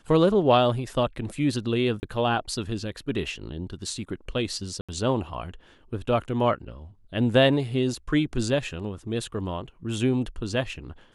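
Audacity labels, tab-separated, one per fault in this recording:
2.000000	2.030000	gap 29 ms
4.810000	4.890000	gap 76 ms

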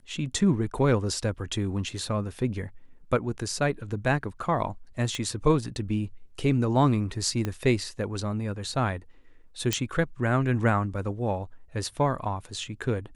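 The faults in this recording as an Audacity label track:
5.150000	5.150000	pop -18 dBFS
7.450000	7.450000	pop -16 dBFS
9.730000	9.730000	pop -9 dBFS

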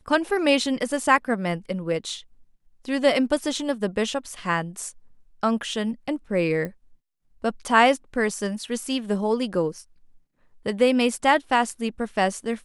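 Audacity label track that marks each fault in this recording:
6.650000	6.650000	pop -19 dBFS

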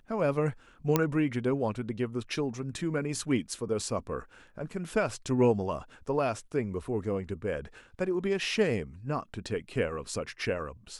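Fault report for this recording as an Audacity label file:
0.960000	0.960000	pop -9 dBFS

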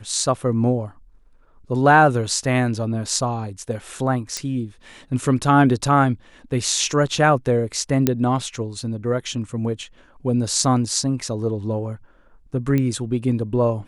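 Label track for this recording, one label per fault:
4.370000	4.370000	pop -11 dBFS
8.070000	8.070000	pop -4 dBFS
12.780000	12.780000	pop -11 dBFS

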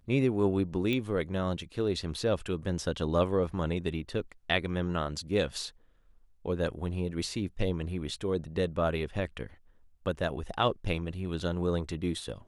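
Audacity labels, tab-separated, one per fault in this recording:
0.930000	0.930000	pop -19 dBFS

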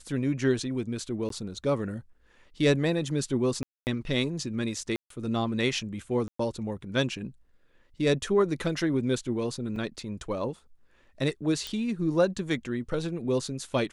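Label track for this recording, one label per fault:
1.290000	1.300000	gap 13 ms
3.630000	3.870000	gap 0.239 s
4.960000	5.100000	gap 0.143 s
6.280000	6.390000	gap 0.114 s
9.760000	9.760000	gap 3 ms
11.670000	11.670000	pop -19 dBFS

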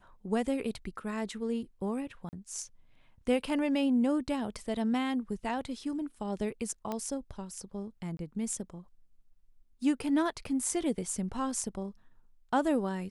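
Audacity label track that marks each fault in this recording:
2.290000	2.330000	gap 39 ms
6.920000	6.920000	pop -21 dBFS
8.170000	8.190000	gap 22 ms

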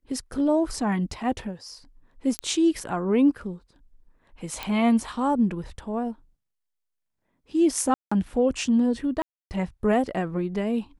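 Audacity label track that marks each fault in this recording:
2.390000	2.390000	pop -11 dBFS
4.630000	4.630000	pop -15 dBFS
7.940000	8.120000	gap 0.175 s
9.220000	9.510000	gap 0.289 s

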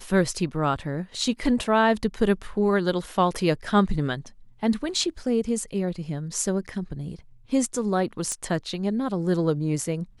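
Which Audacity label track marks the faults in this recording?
8.320000	8.320000	pop -16 dBFS

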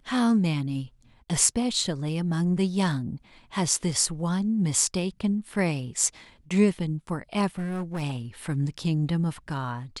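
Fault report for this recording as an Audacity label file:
7.580000	8.030000	clipped -27 dBFS

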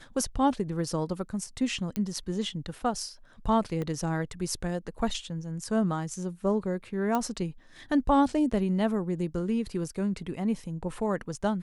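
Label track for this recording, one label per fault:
1.960000	1.960000	pop -17 dBFS
3.820000	3.820000	pop -22 dBFS
7.150000	7.150000	pop -15 dBFS

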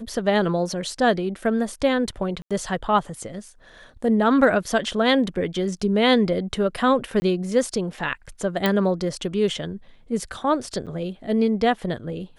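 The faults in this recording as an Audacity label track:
2.420000	2.510000	gap 86 ms
7.200000	7.220000	gap 20 ms
8.660000	8.660000	pop -7 dBFS
10.860000	10.870000	gap 7.8 ms

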